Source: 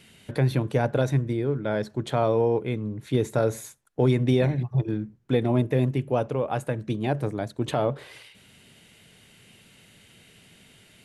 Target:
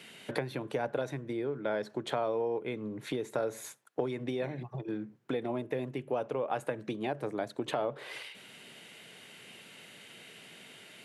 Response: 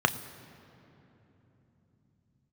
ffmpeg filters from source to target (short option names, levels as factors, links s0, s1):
-af "highpass=f=120:w=0.5412,highpass=f=120:w=1.3066,acompressor=threshold=0.0224:ratio=6,bass=f=250:g=-11,treble=f=4000:g=-5,volume=1.78"